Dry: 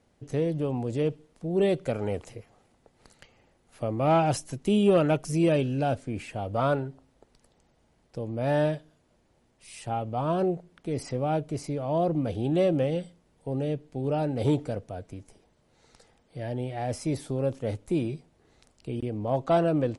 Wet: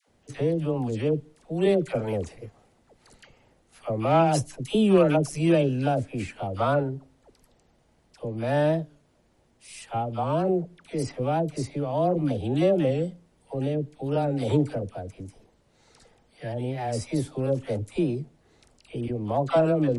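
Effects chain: phase dispersion lows, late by 82 ms, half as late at 740 Hz; warped record 45 rpm, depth 100 cents; trim +2 dB

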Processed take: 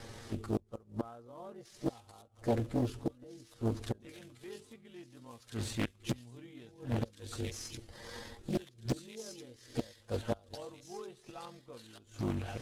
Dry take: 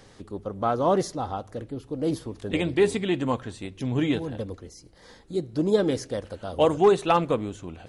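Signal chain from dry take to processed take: CVSD coder 64 kbps; inverted gate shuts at -23 dBFS, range -30 dB; peaking EQ 66 Hz +7 dB 0.65 oct; gate with hold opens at -55 dBFS; on a send: feedback echo behind a high-pass 1031 ms, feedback 45%, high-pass 2.5 kHz, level -4.5 dB; on the sum: granular stretch 1.6×, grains 46 ms; loudspeaker Doppler distortion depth 0.87 ms; trim +4 dB

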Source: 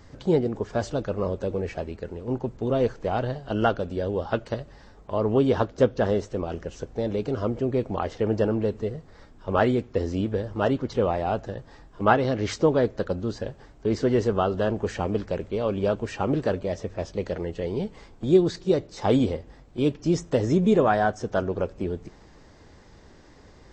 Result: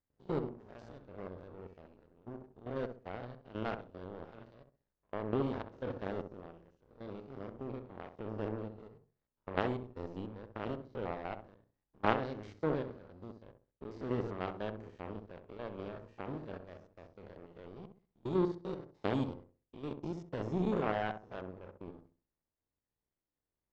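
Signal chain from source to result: spectrogram pixelated in time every 100 ms; power-law waveshaper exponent 2; distance through air 110 m; on a send: filtered feedback delay 65 ms, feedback 32%, low-pass 910 Hz, level -6.5 dB; on the sum: trim -1.5 dB

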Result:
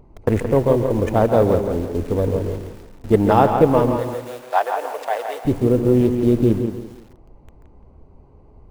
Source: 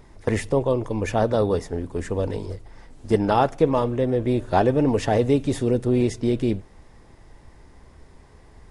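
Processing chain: local Wiener filter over 25 samples; in parallel at -6 dB: word length cut 6-bit, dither none; on the sum: dynamic bell 4.3 kHz, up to -6 dB, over -45 dBFS, Q 0.88; 3.97–5.45 s: high-pass 700 Hz 24 dB/octave; on a send: tape echo 169 ms, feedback 33%, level -6 dB, low-pass 2.9 kHz; on the sum: bit-crushed delay 136 ms, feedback 35%, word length 7-bit, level -11 dB; trim +1.5 dB

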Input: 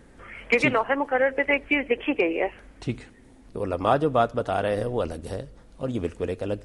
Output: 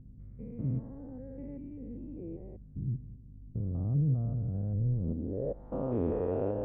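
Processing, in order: spectrogram pixelated in time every 200 ms; low-pass sweep 140 Hz -> 890 Hz, 4.98–5.67 s; hum 50 Hz, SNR 20 dB

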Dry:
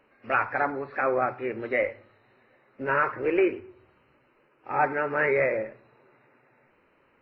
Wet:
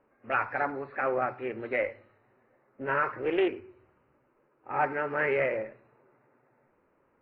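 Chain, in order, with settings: level-controlled noise filter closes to 1.3 kHz, open at -22 dBFS; loudspeaker Doppler distortion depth 0.13 ms; trim -3.5 dB

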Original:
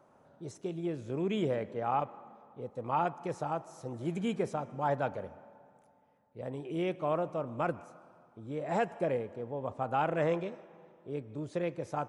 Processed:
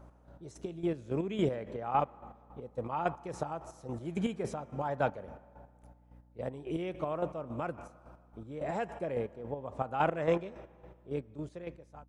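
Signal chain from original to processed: fade out at the end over 1.04 s; hum 60 Hz, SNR 22 dB; square tremolo 3.6 Hz, depth 60%, duty 35%; trim +3 dB

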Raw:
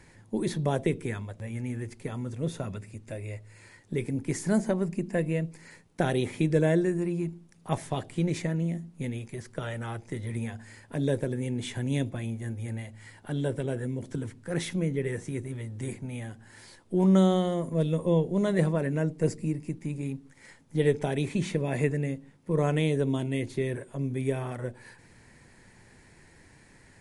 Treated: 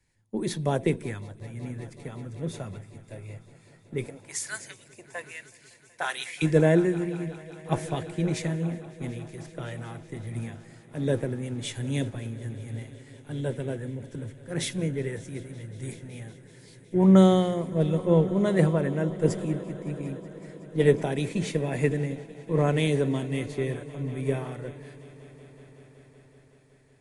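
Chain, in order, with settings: 4.07–6.42 s: LFO high-pass saw up 1.2 Hz 530–3400 Hz; echo with a slow build-up 187 ms, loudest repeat 5, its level -18 dB; three bands expanded up and down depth 70%

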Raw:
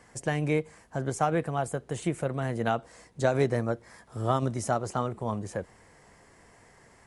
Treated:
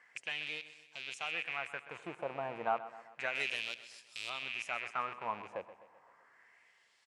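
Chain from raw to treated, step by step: rattle on loud lows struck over -38 dBFS, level -24 dBFS; LFO band-pass sine 0.31 Hz 820–4100 Hz; 3.35–4.30 s: tone controls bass 0 dB, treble +13 dB; on a send: feedback delay 128 ms, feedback 52%, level -14.5 dB

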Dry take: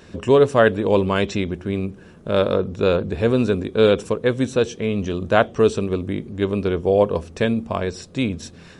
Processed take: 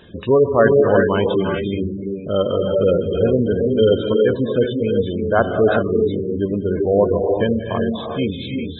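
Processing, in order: knee-point frequency compression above 3 kHz 4:1; gated-style reverb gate 420 ms rising, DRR 1 dB; spectral gate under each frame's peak -20 dB strong

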